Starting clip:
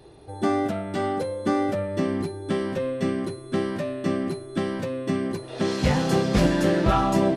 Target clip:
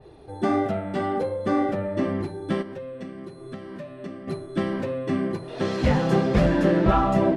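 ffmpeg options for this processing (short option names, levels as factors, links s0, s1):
-filter_complex "[0:a]highshelf=f=4500:g=-10,bandreject=f=56.33:t=h:w=4,bandreject=f=112.66:t=h:w=4,bandreject=f=168.99:t=h:w=4,bandreject=f=225.32:t=h:w=4,bandreject=f=281.65:t=h:w=4,bandreject=f=337.98:t=h:w=4,bandreject=f=394.31:t=h:w=4,bandreject=f=450.64:t=h:w=4,bandreject=f=506.97:t=h:w=4,bandreject=f=563.3:t=h:w=4,bandreject=f=619.63:t=h:w=4,bandreject=f=675.96:t=h:w=4,bandreject=f=732.29:t=h:w=4,bandreject=f=788.62:t=h:w=4,bandreject=f=844.95:t=h:w=4,bandreject=f=901.28:t=h:w=4,bandreject=f=957.61:t=h:w=4,bandreject=f=1013.94:t=h:w=4,bandreject=f=1070.27:t=h:w=4,bandreject=f=1126.6:t=h:w=4,bandreject=f=1182.93:t=h:w=4,bandreject=f=1239.26:t=h:w=4,bandreject=f=1295.59:t=h:w=4,bandreject=f=1351.92:t=h:w=4,bandreject=f=1408.25:t=h:w=4,bandreject=f=1464.58:t=h:w=4,bandreject=f=1520.91:t=h:w=4,asplit=3[s0][s1][s2];[s0]afade=t=out:st=2.61:d=0.02[s3];[s1]acompressor=threshold=0.0178:ratio=10,afade=t=in:st=2.61:d=0.02,afade=t=out:st=4.27:d=0.02[s4];[s2]afade=t=in:st=4.27:d=0.02[s5];[s3][s4][s5]amix=inputs=3:normalize=0,flanger=delay=1.5:depth=4.6:regen=-42:speed=1.4:shape=sinusoidal,adynamicequalizer=threshold=0.00398:dfrequency=3100:dqfactor=0.7:tfrequency=3100:tqfactor=0.7:attack=5:release=100:ratio=0.375:range=3:mode=cutabove:tftype=highshelf,volume=1.88"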